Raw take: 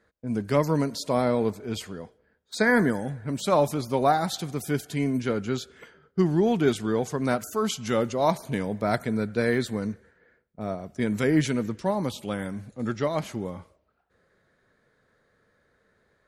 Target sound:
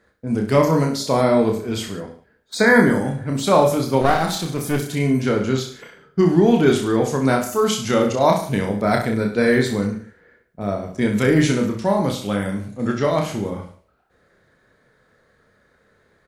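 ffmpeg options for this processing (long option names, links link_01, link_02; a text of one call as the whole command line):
ffmpeg -i in.wav -filter_complex "[0:a]aecho=1:1:30|63|99.3|139.2|183.2:0.631|0.398|0.251|0.158|0.1,asettb=1/sr,asplit=3[link_01][link_02][link_03];[link_01]atrim=end=4.014[link_04];[link_02]atrim=start=4.01:end=4.91,asetpts=PTS-STARTPTS,afade=type=in:duration=0.004:curve=qsin,afade=type=out:start_time=0.896:duration=0.004:curve=qsin,aeval=exprs='clip(val(0),-1,0.0355)':channel_layout=same[link_05];[link_03]atrim=start=4.906[link_06];[link_04][link_05]acrossfade=duration=0.004:curve1=hsin:curve2=qsin[link_07];[link_07][link_06]acrossfade=duration=0.004:curve1=qsin:curve2=hsin,volume=5.5dB" out.wav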